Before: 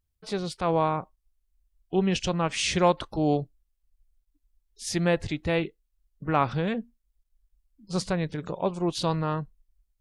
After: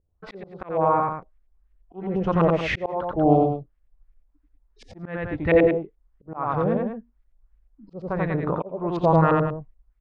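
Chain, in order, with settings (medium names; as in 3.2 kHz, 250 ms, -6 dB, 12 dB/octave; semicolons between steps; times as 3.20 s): LFO low-pass saw up 2.9 Hz 450–2200 Hz; loudspeakers at several distances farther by 30 m -3 dB, 66 m -11 dB; slow attack 603 ms; trim +6 dB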